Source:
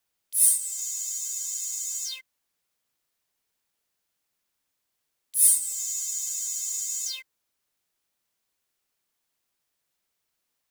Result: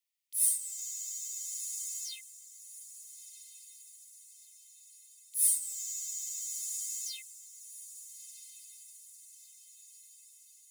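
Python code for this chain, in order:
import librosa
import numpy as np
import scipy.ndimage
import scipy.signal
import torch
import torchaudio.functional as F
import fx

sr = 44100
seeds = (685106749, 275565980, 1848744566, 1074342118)

y = fx.brickwall_highpass(x, sr, low_hz=1800.0)
y = fx.echo_diffused(y, sr, ms=1348, feedback_pct=56, wet_db=-13.5)
y = y * 10.0 ** (-8.0 / 20.0)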